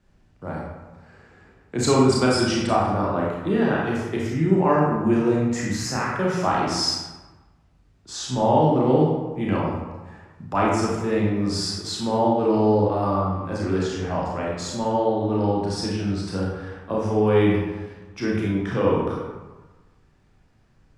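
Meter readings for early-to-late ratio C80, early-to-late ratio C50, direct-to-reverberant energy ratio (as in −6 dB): 2.5 dB, 0.0 dB, −4.0 dB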